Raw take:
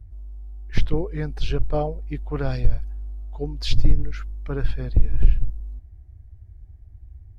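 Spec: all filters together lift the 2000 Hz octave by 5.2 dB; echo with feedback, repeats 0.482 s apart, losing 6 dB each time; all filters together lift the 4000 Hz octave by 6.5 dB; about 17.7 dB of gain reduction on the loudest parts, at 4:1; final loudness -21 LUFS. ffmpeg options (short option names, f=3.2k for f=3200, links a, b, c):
-af "equalizer=f=2k:t=o:g=5,equalizer=f=4k:t=o:g=6.5,acompressor=threshold=-29dB:ratio=4,aecho=1:1:482|964|1446|1928|2410|2892:0.501|0.251|0.125|0.0626|0.0313|0.0157,volume=14.5dB"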